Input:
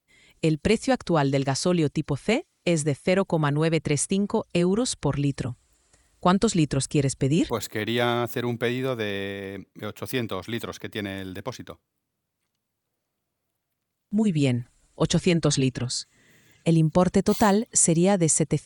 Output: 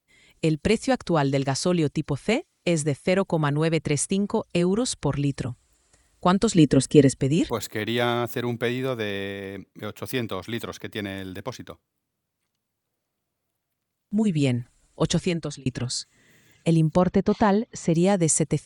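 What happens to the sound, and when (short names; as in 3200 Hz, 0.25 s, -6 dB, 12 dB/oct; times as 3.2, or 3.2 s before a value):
6.57–7.16 small resonant body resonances 250/460/1900/3000 Hz, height 13 dB, ringing for 40 ms
15.1–15.66 fade out
16.99–17.94 Gaussian blur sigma 2 samples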